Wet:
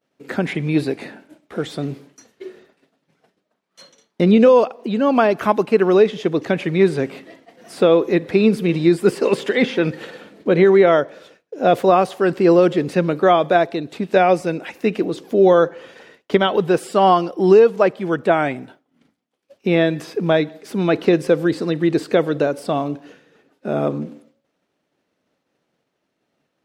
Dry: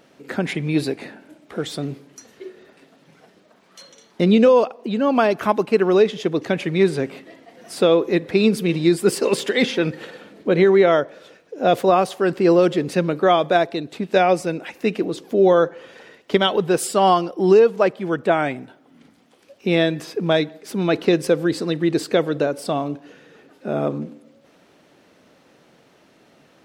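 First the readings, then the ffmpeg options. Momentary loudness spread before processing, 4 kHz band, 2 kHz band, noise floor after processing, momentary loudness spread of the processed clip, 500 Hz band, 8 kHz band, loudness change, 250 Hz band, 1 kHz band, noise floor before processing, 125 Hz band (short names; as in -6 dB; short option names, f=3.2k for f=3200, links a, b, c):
13 LU, -2.5 dB, +1.0 dB, -74 dBFS, 13 LU, +2.0 dB, n/a, +2.0 dB, +2.0 dB, +2.0 dB, -56 dBFS, +2.0 dB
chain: -filter_complex "[0:a]acrossover=split=2900[a][b];[b]acompressor=threshold=-39dB:ratio=4:attack=1:release=60[c];[a][c]amix=inputs=2:normalize=0,agate=range=-33dB:threshold=-41dB:ratio=3:detection=peak,volume=2dB"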